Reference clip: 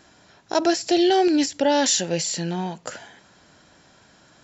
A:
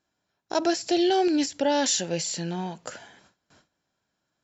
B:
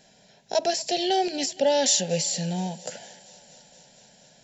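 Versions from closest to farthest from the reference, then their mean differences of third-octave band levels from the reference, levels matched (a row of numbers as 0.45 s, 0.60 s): A, B; 3.0 dB, 4.0 dB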